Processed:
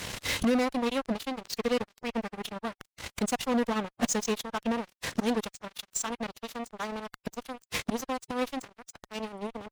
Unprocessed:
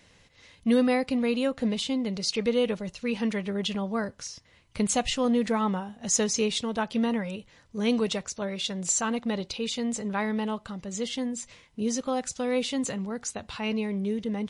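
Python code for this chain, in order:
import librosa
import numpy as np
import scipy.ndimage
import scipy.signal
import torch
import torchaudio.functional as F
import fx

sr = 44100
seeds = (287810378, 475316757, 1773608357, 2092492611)

y = fx.gate_flip(x, sr, shuts_db=-30.0, range_db=-29)
y = fx.fuzz(y, sr, gain_db=52.0, gate_db=-56.0)
y = fx.stretch_vocoder(y, sr, factor=0.67)
y = y * librosa.db_to_amplitude(-6.5)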